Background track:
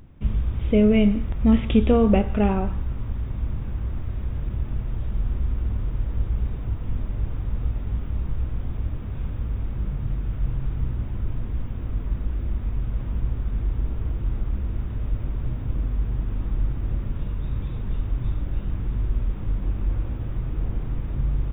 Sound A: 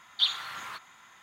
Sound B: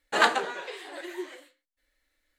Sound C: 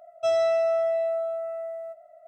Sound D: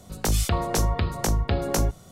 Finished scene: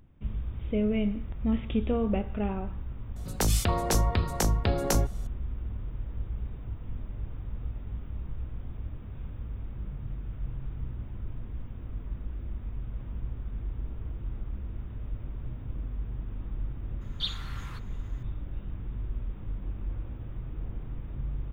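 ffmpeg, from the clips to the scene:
-filter_complex "[0:a]volume=-10dB[a];[4:a]atrim=end=2.11,asetpts=PTS-STARTPTS,volume=-2dB,afade=t=in:d=0.004:c=hsin,afade=t=out:st=2.106:d=0.004:c=hsin,adelay=3160[b];[1:a]atrim=end=1.22,asetpts=PTS-STARTPTS,volume=-7.5dB,afade=t=in:d=0.004:c=hsin,afade=t=out:st=1.216:d=0.004:c=hsin,adelay=17010[c];[a][b][c]amix=inputs=3:normalize=0"

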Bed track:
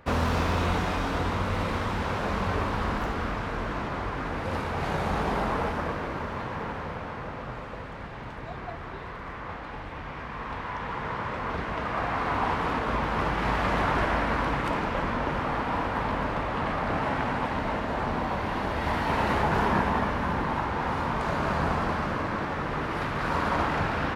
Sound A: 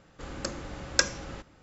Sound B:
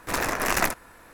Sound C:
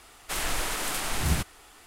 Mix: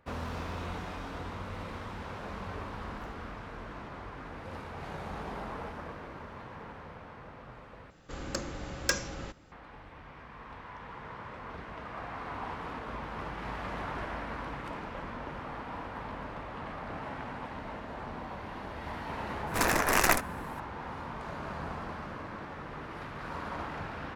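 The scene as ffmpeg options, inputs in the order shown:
-filter_complex "[0:a]volume=-12dB[a];[1:a]asoftclip=type=tanh:threshold=-17dB[b];[a]asplit=2[c][d];[c]atrim=end=7.904[e];[b]atrim=end=1.62[f];[d]atrim=start=9.516[g];[2:a]atrim=end=1.13,asetpts=PTS-STARTPTS,volume=-1dB,afade=t=in:d=0.004:c=hsin,afade=t=out:st=1.126:d=0.004:c=hsin,adelay=19470[h];[e][f]acrossfade=d=0.004:c1=hsin:c2=hsin[i];[i][g]acrossfade=d=0.004:c1=hsin:c2=hsin[j];[j][h]amix=inputs=2:normalize=0"

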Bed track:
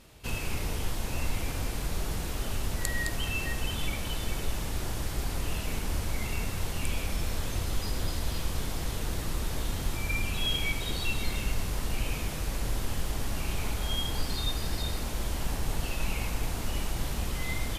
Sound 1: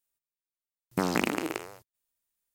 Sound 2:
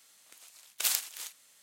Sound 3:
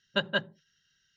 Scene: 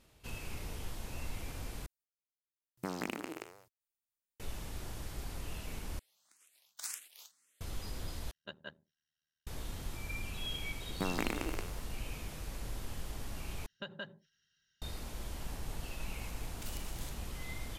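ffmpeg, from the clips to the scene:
-filter_complex "[1:a]asplit=2[a][b];[2:a]asplit=2[c][d];[3:a]asplit=2[e][f];[0:a]volume=-10.5dB[g];[c]asplit=2[h][i];[i]afreqshift=1.9[j];[h][j]amix=inputs=2:normalize=1[k];[e]tremolo=f=77:d=0.857[l];[f]acompressor=threshold=-32dB:ratio=6:attack=3.2:release=140:knee=1:detection=peak[m];[d]acompressor=threshold=-40dB:ratio=6:attack=3.2:release=140:knee=1:detection=peak[n];[g]asplit=5[o][p][q][r][s];[o]atrim=end=1.864[t];[a]atrim=end=2.54,asetpts=PTS-STARTPTS,volume=-11.5dB[u];[p]atrim=start=4.396:end=5.994[v];[k]atrim=end=1.62,asetpts=PTS-STARTPTS,volume=-10dB[w];[q]atrim=start=7.606:end=8.314[x];[l]atrim=end=1.16,asetpts=PTS-STARTPTS,volume=-16.5dB[y];[r]atrim=start=9.466:end=13.664[z];[m]atrim=end=1.16,asetpts=PTS-STARTPTS,volume=-6.5dB[aa];[s]atrim=start=14.816[ab];[b]atrim=end=2.54,asetpts=PTS-STARTPTS,volume=-8.5dB,afade=t=in:d=0.004:c=hsin,afade=t=out:st=2.536:d=0.004:c=hsin,adelay=10030[ac];[n]atrim=end=1.62,asetpts=PTS-STARTPTS,volume=-6dB,afade=t=in:d=0.004:c=hsin,afade=t=out:st=1.616:d=0.004:c=hsin,adelay=15820[ad];[t][u]acrossfade=d=0.004:c1=hsin:c2=hsin[ae];[ae][v]acrossfade=d=0.004:c1=hsin:c2=hsin[af];[af][w]acrossfade=d=0.004:c1=hsin:c2=hsin[ag];[ag][x]acrossfade=d=0.004:c1=hsin:c2=hsin[ah];[ah][y]acrossfade=d=0.004:c1=hsin:c2=hsin[ai];[ai][z]acrossfade=d=0.004:c1=hsin:c2=hsin[aj];[aj][aa]acrossfade=d=0.004:c1=hsin:c2=hsin[ak];[ak][ab]acrossfade=d=0.004:c1=hsin:c2=hsin[al];[al][ac][ad]amix=inputs=3:normalize=0"

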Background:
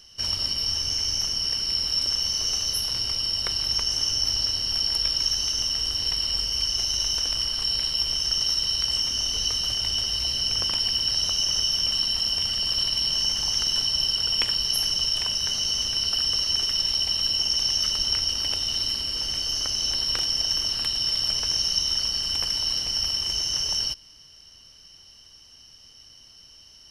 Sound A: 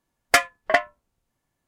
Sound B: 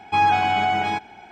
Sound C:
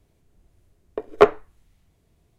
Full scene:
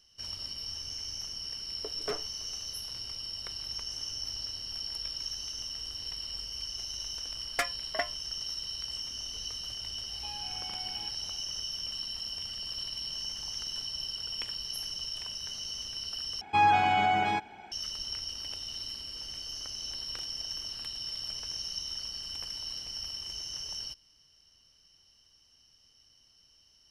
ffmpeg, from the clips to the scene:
-filter_complex "[2:a]asplit=2[a][b];[0:a]volume=-13dB[c];[3:a]asoftclip=type=hard:threshold=-18.5dB[d];[a]acompressor=threshold=-29dB:ratio=6:attack=3.2:release=140:knee=1:detection=peak[e];[c]asplit=2[f][g];[f]atrim=end=16.414[h];[b]atrim=end=1.31,asetpts=PTS-STARTPTS,volume=-5dB[i];[g]atrim=start=17.716[j];[d]atrim=end=2.38,asetpts=PTS-STARTPTS,volume=-12dB,afade=t=in:d=0.004:c=hsin,afade=t=out:st=2.376:d=0.004:c=hsin,adelay=870[k];[1:a]atrim=end=1.67,asetpts=PTS-STARTPTS,volume=-13.5dB,afade=t=in:d=0.004:c=hsin,afade=t=out:st=1.666:d=0.004:c=hsin,adelay=7250[l];[e]atrim=end=1.31,asetpts=PTS-STARTPTS,volume=-17.5dB,afade=t=in:d=0.004:c=hsin,afade=t=out:st=1.306:d=0.004:c=hsin,adelay=10110[m];[h][i]acrossfade=d=0.004:c1=hsin:c2=hsin[n];[n][j]acrossfade=d=0.004:c1=hsin:c2=hsin[o];[o][k][l][m]amix=inputs=4:normalize=0"

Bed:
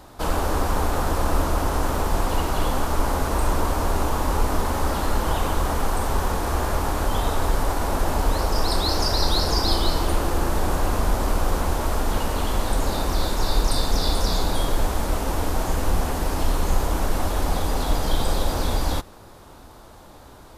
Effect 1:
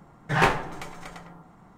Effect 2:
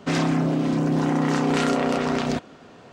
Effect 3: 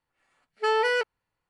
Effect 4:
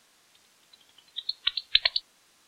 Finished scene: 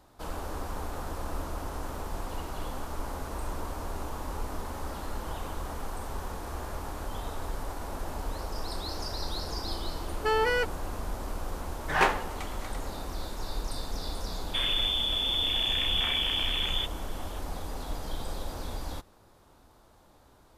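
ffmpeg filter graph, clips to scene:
-filter_complex "[0:a]volume=-13.5dB[a];[1:a]highpass=290[b];[2:a]lowpass=f=3.1k:t=q:w=0.5098,lowpass=f=3.1k:t=q:w=0.6013,lowpass=f=3.1k:t=q:w=0.9,lowpass=f=3.1k:t=q:w=2.563,afreqshift=-3700[c];[3:a]atrim=end=1.49,asetpts=PTS-STARTPTS,volume=-2.5dB,afade=t=in:d=0.004:c=hsin,afade=t=out:st=1.486:d=0.004:c=hsin,adelay=424242S[d];[b]atrim=end=1.77,asetpts=PTS-STARTPTS,volume=-2.5dB,afade=t=in:d=0.004:c=hsin,afade=t=out:st=1.766:d=0.004:c=hsin,adelay=11590[e];[c]atrim=end=2.92,asetpts=PTS-STARTPTS,volume=-7.5dB,afade=t=in:d=0.004:c=hsin,afade=t=out:st=2.916:d=0.004:c=hsin,adelay=14470[f];[a][d][e][f]amix=inputs=4:normalize=0"

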